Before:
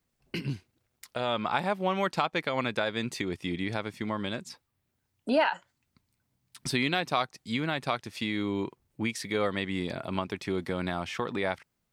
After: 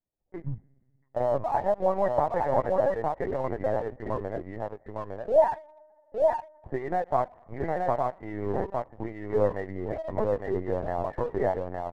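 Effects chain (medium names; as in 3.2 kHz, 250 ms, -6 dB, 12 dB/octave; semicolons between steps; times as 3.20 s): spectral noise reduction 11 dB; steep low-pass 1.9 kHz 96 dB/octave; static phaser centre 580 Hz, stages 4; delay 863 ms -3 dB; on a send at -21 dB: reverberation RT60 2.0 s, pre-delay 46 ms; on the sum: LPC vocoder at 8 kHz pitch kept; in parallel at -3 dB: crossover distortion -49.5 dBFS; on the sum: trim +2 dB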